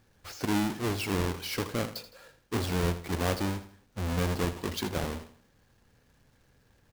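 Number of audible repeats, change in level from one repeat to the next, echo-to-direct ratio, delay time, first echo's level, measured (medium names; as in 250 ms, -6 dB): 3, -8.5 dB, -12.5 dB, 81 ms, -13.0 dB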